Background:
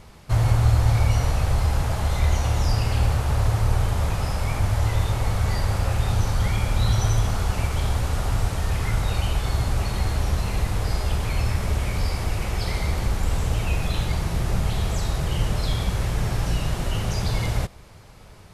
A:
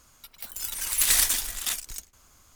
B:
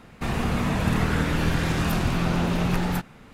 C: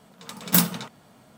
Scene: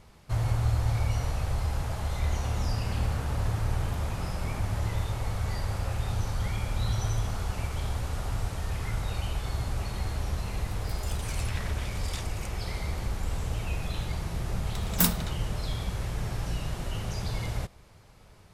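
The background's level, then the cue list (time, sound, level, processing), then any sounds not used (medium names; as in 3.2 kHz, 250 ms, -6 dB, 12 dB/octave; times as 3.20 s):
background -8 dB
2.03 s: add B -18 dB + local Wiener filter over 9 samples
10.47 s: add A -8.5 dB + low-pass that closes with the level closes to 1.8 kHz, closed at -18 dBFS
14.46 s: add C -5 dB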